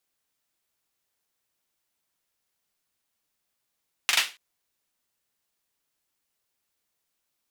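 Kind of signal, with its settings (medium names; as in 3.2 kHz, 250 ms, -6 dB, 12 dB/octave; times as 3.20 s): hand clap length 0.28 s, bursts 3, apart 41 ms, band 2.6 kHz, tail 0.28 s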